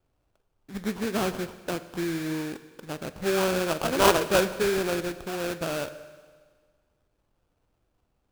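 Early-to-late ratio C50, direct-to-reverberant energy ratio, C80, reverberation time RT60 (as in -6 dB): 13.5 dB, 12.0 dB, 14.5 dB, 1.6 s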